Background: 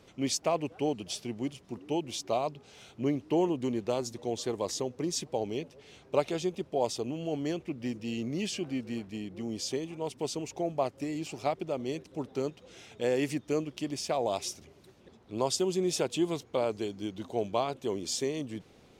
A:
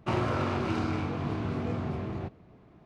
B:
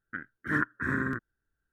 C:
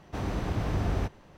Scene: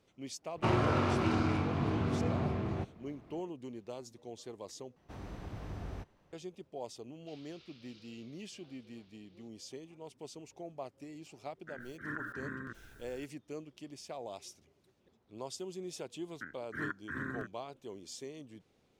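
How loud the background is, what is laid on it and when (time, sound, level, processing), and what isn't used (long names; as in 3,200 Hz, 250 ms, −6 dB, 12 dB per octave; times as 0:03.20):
background −13.5 dB
0:00.56: mix in A −0.5 dB
0:04.96: overwrite with C −14 dB
0:07.20: mix in A −11.5 dB + flat-topped band-pass 4,200 Hz, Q 1.7
0:11.54: mix in B −13.5 dB + level that may fall only so fast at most 24 dB per second
0:16.28: mix in B −10 dB + multiband upward and downward compressor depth 40%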